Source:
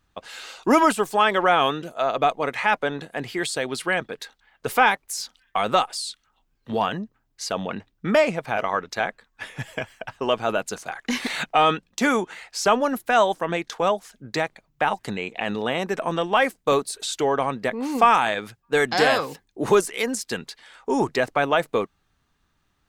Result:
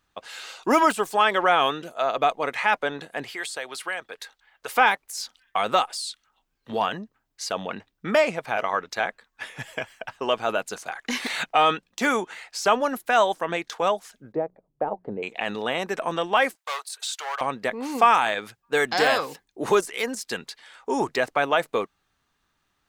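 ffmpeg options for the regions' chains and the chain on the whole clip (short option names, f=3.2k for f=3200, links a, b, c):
-filter_complex "[0:a]asettb=1/sr,asplit=3[a][b][c];[a]atrim=end=3.244[d];[b]atrim=start=3.24:end=4.76,asetpts=PTS-STARTPTS,afade=t=in:d=0.004:c=qsin,afade=t=out:st=1.516:d=0.004:c=qsin,equalizer=f=180:w=0.8:g=-8,acrossover=split=520|2300|6900[e][f][g][h];[e]acompressor=threshold=-43dB:ratio=3[i];[f]acompressor=threshold=-30dB:ratio=3[j];[g]acompressor=threshold=-39dB:ratio=3[k];[h]acompressor=threshold=-38dB:ratio=3[l];[i][j][k][l]amix=inputs=4:normalize=0[m];[c]atrim=start=4.756[n];[d][m]acrossfade=d=0.004:c1=hsin:c2=qsin[o];[o][n]acrossfade=d=0.004:c1=qsin:c2=hsin,asettb=1/sr,asplit=3[p][q][r];[p]atrim=end=14.324[s];[q]atrim=start=14.32:end=15.23,asetpts=PTS-STARTPTS,afade=t=in:d=0.004:c=qsin,afade=t=out:st=0.906:d=0.004:c=qsin,lowpass=f=510:t=q:w=1.6,bandreject=f=60:t=h:w=6,bandreject=f=120:t=h:w=6,bandreject=f=180:t=h:w=6[t];[r]atrim=start=15.226[u];[s][t]acrossfade=d=0.004:c1=hsin:c2=qsin[v];[v][u]acrossfade=d=0.004:c1=qsin:c2=hsin,asettb=1/sr,asplit=3[w][x][y];[w]atrim=end=16.554[z];[x]atrim=start=16.55:end=17.41,asetpts=PTS-STARTPTS,afade=t=in:d=0.004:c=qsin,afade=t=out:st=0.856:d=0.004:c=qsin,asoftclip=type=hard:threshold=-20dB,highpass=f=770:w=0.5412,highpass=f=770:w=1.3066[aa];[y]atrim=start=17.406[ab];[z][aa]acrossfade=d=0.004:c1=hsin:c2=qsin[ac];[ac][ab]acrossfade=d=0.004:c1=qsin:c2=hsin,deesser=0.55,lowshelf=f=270:g=-9"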